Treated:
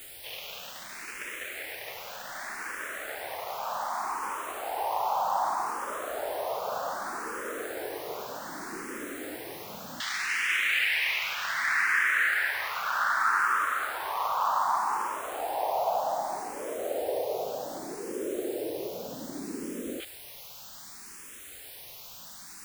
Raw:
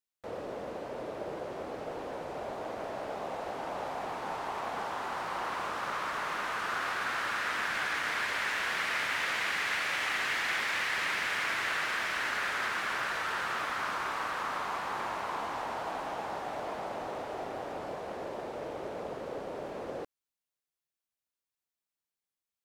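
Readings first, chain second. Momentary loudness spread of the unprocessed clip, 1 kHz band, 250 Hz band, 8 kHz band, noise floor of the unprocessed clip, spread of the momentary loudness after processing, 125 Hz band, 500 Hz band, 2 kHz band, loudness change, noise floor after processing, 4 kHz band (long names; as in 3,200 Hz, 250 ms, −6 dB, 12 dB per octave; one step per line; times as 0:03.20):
10 LU, +4.5 dB, +3.5 dB, +5.0 dB, below −85 dBFS, 17 LU, can't be measured, +3.5 dB, +2.5 dB, +3.0 dB, −46 dBFS, +0.5 dB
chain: each half-wave held at its own peak
auto-filter band-pass saw down 0.1 Hz 240–3,200 Hz
background noise white −52 dBFS
frequency shifter mixed with the dry sound +0.65 Hz
level +9 dB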